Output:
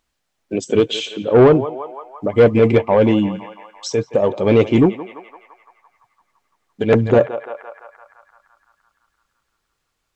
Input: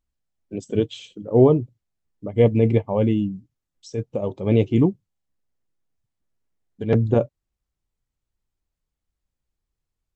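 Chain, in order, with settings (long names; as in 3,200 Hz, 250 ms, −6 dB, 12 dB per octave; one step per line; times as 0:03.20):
feedback echo with a band-pass in the loop 170 ms, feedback 72%, band-pass 1,300 Hz, level −13 dB
mid-hump overdrive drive 18 dB, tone 5,000 Hz, clips at −3 dBFS
in parallel at −2 dB: downward compressor, threshold −27 dBFS, peak gain reduction 17.5 dB
on the sum: level +1 dB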